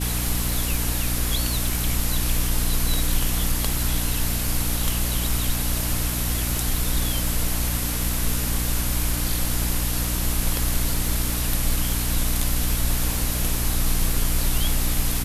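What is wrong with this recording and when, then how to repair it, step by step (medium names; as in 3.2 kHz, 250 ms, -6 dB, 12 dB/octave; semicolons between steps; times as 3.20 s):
crackle 48 per s -27 dBFS
hum 60 Hz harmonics 5 -27 dBFS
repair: de-click; de-hum 60 Hz, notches 5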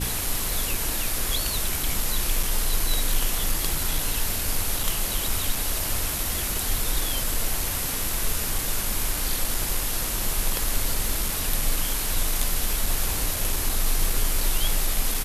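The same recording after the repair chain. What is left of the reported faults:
nothing left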